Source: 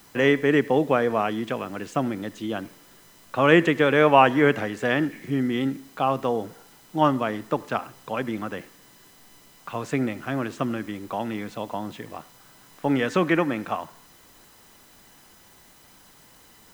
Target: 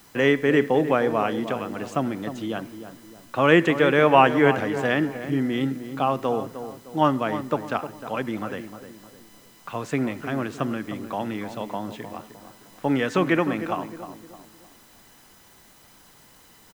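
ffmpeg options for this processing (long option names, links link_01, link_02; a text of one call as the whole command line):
ffmpeg -i in.wav -filter_complex "[0:a]asplit=2[link_01][link_02];[link_02]adelay=307,lowpass=frequency=1300:poles=1,volume=-10dB,asplit=2[link_03][link_04];[link_04]adelay=307,lowpass=frequency=1300:poles=1,volume=0.42,asplit=2[link_05][link_06];[link_06]adelay=307,lowpass=frequency=1300:poles=1,volume=0.42,asplit=2[link_07][link_08];[link_08]adelay=307,lowpass=frequency=1300:poles=1,volume=0.42[link_09];[link_01][link_03][link_05][link_07][link_09]amix=inputs=5:normalize=0" out.wav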